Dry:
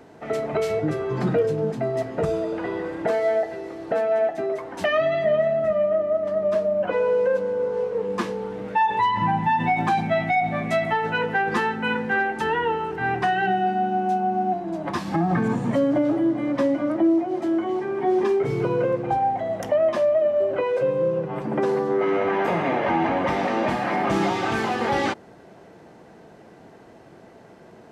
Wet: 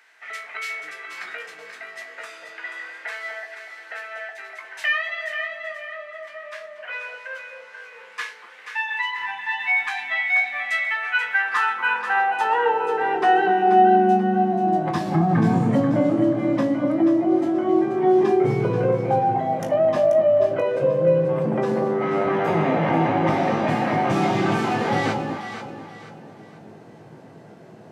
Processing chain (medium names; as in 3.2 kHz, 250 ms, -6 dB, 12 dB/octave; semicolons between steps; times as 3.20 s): high-pass sweep 1.9 kHz -> 130 Hz, 11.04–14.71 s; feedback comb 53 Hz, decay 0.19 s, harmonics all, mix 90%; echo whose repeats swap between lows and highs 242 ms, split 880 Hz, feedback 58%, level -3.5 dB; trim +4 dB